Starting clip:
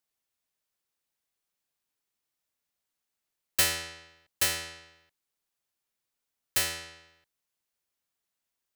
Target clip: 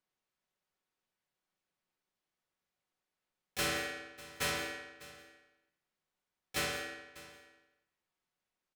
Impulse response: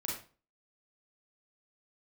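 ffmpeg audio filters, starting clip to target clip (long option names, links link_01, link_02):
-filter_complex "[0:a]aemphasis=mode=reproduction:type=75kf,aecho=1:1:5.4:0.49,volume=31.5dB,asoftclip=hard,volume=-31.5dB,aecho=1:1:598:0.119,asplit=2[link_01][link_02];[1:a]atrim=start_sample=2205,adelay=130[link_03];[link_02][link_03]afir=irnorm=-1:irlink=0,volume=-13.5dB[link_04];[link_01][link_04]amix=inputs=2:normalize=0,asplit=3[link_05][link_06][link_07];[link_06]asetrate=35002,aresample=44100,atempo=1.25992,volume=-5dB[link_08];[link_07]asetrate=58866,aresample=44100,atempo=0.749154,volume=-7dB[link_09];[link_05][link_08][link_09]amix=inputs=3:normalize=0"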